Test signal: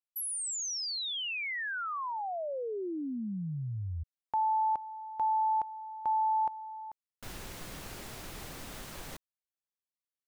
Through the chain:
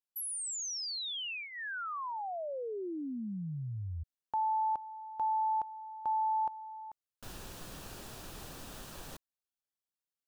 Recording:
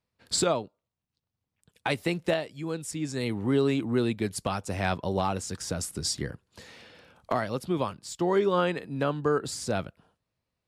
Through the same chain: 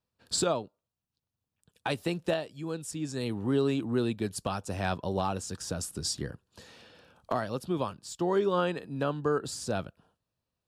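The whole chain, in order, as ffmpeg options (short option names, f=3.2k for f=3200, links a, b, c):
-af "equalizer=f=2.1k:w=6.8:g=-11,volume=-2.5dB"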